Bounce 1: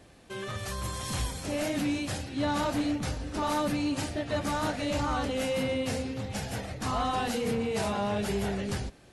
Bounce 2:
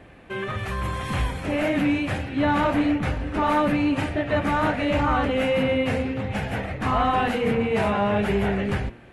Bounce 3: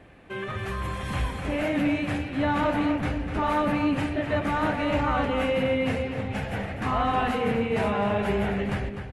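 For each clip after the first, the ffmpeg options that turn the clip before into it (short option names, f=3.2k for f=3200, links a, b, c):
-af "highshelf=f=3.5k:t=q:w=1.5:g=-13.5,bandreject=f=117.3:t=h:w=4,bandreject=f=234.6:t=h:w=4,bandreject=f=351.9:t=h:w=4,bandreject=f=469.2:t=h:w=4,bandreject=f=586.5:t=h:w=4,bandreject=f=703.8:t=h:w=4,bandreject=f=821.1:t=h:w=4,bandreject=f=938.4:t=h:w=4,bandreject=f=1.0557k:t=h:w=4,bandreject=f=1.173k:t=h:w=4,bandreject=f=1.2903k:t=h:w=4,bandreject=f=1.4076k:t=h:w=4,bandreject=f=1.5249k:t=h:w=4,bandreject=f=1.6422k:t=h:w=4,bandreject=f=1.7595k:t=h:w=4,bandreject=f=1.8768k:t=h:w=4,bandreject=f=1.9941k:t=h:w=4,bandreject=f=2.1114k:t=h:w=4,bandreject=f=2.2287k:t=h:w=4,bandreject=f=2.346k:t=h:w=4,bandreject=f=2.4633k:t=h:w=4,bandreject=f=2.5806k:t=h:w=4,bandreject=f=2.6979k:t=h:w=4,bandreject=f=2.8152k:t=h:w=4,bandreject=f=2.9325k:t=h:w=4,bandreject=f=3.0498k:t=h:w=4,bandreject=f=3.1671k:t=h:w=4,bandreject=f=3.2844k:t=h:w=4,volume=7.5dB"
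-filter_complex "[0:a]asplit=2[a][b];[b]adelay=250.7,volume=-7dB,highshelf=f=4k:g=-5.64[c];[a][c]amix=inputs=2:normalize=0,volume=-3.5dB"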